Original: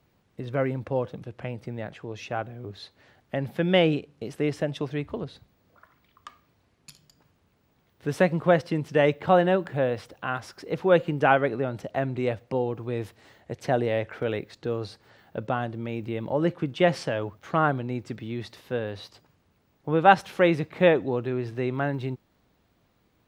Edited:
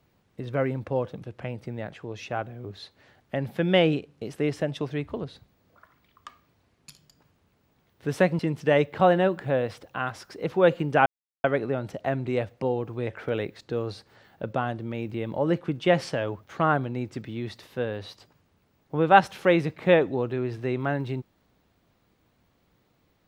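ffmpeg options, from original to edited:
-filter_complex "[0:a]asplit=4[s0][s1][s2][s3];[s0]atrim=end=8.392[s4];[s1]atrim=start=8.668:end=11.34,asetpts=PTS-STARTPTS,afade=t=out:st=2.668:d=0.004:c=hsin,apad=pad_dur=0.38[s5];[s2]atrim=start=11.34:end=12.972,asetpts=PTS-STARTPTS,afade=t=in:d=0.004:c=hsin[s6];[s3]atrim=start=14.008[s7];[s5][s6]concat=n=2:v=0:a=1[s8];[s4][s8]acrossfade=d=0.004:c1=hsin:c2=hsin[s9];[s9][s7]acrossfade=d=0.004:c1=hsin:c2=hsin"

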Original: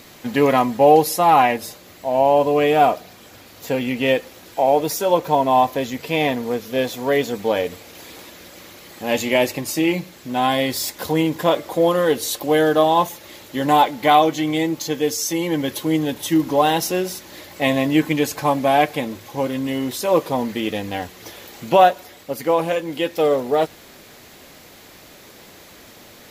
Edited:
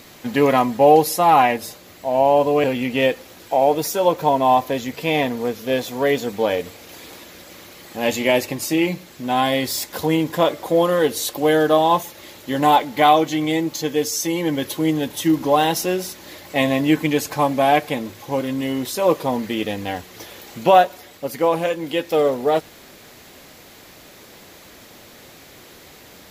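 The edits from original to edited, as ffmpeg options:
-filter_complex "[0:a]asplit=2[s0][s1];[s0]atrim=end=2.642[s2];[s1]atrim=start=3.698[s3];[s2][s3]acrossfade=d=0.004:c1=hsin:c2=hsin"

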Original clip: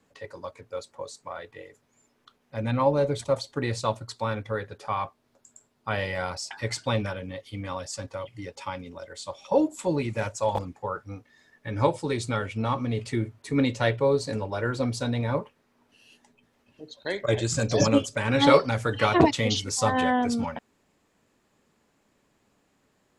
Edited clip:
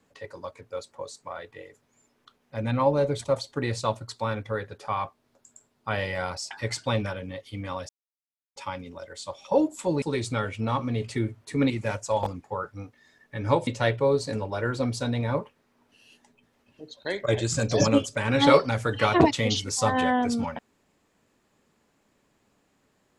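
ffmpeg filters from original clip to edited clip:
-filter_complex "[0:a]asplit=6[s0][s1][s2][s3][s4][s5];[s0]atrim=end=7.89,asetpts=PTS-STARTPTS,afade=t=out:st=7.886:d=0.004:c=hsin[s6];[s1]atrim=start=7.89:end=8.56,asetpts=PTS-STARTPTS,volume=0[s7];[s2]atrim=start=8.56:end=10.022,asetpts=PTS-STARTPTS,afade=t=in:d=0.004:c=hsin[s8];[s3]atrim=start=11.988:end=13.672[s9];[s4]atrim=start=10.018:end=11.992[s10];[s5]atrim=start=13.668[s11];[s6][s7][s8]concat=n=3:v=0:a=1[s12];[s12][s9]acrossfade=d=0.004:c1=hsin:c2=hsin[s13];[s13][s10]acrossfade=d=0.004:c1=hsin:c2=hsin[s14];[s14][s11]acrossfade=d=0.004:c1=hsin:c2=hsin"

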